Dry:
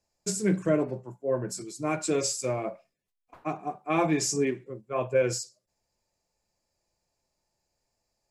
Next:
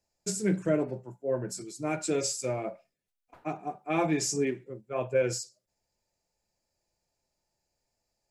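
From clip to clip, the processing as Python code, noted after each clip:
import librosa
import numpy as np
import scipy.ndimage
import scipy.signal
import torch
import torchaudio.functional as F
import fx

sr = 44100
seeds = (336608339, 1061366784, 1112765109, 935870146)

y = fx.notch(x, sr, hz=1100.0, q=8.4)
y = y * 10.0 ** (-2.0 / 20.0)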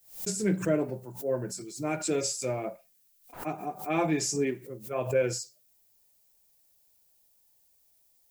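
y = fx.dmg_noise_colour(x, sr, seeds[0], colour='violet', level_db=-66.0)
y = fx.pre_swell(y, sr, db_per_s=130.0)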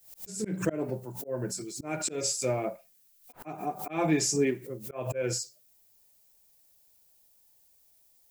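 y = fx.auto_swell(x, sr, attack_ms=200.0)
y = y * 10.0 ** (2.5 / 20.0)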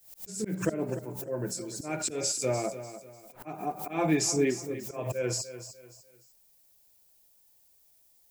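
y = fx.echo_feedback(x, sr, ms=296, feedback_pct=33, wet_db=-12.5)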